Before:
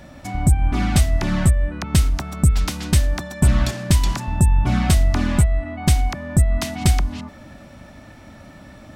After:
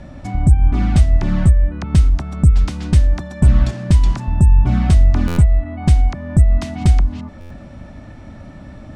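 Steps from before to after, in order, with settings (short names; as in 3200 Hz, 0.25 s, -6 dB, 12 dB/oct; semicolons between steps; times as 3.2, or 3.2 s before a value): LPF 10000 Hz 24 dB/oct; tilt -2 dB/oct; in parallel at -2.5 dB: compressor, threshold -27 dBFS, peak gain reduction 22.5 dB; on the sum: stuck buffer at 5.27/7.4, samples 512, times 8; gain -3.5 dB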